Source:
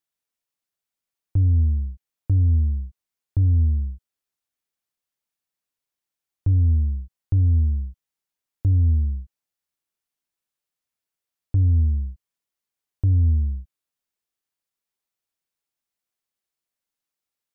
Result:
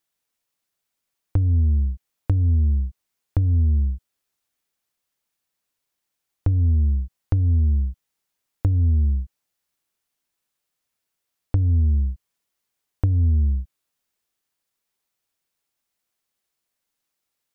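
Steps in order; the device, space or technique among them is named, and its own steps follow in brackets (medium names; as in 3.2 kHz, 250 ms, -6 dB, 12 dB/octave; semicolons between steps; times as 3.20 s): drum-bus smash (transient shaper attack +8 dB, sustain +1 dB; compression 10:1, threshold -21 dBFS, peak gain reduction 12 dB; saturation -17 dBFS, distortion -19 dB); trim +6.5 dB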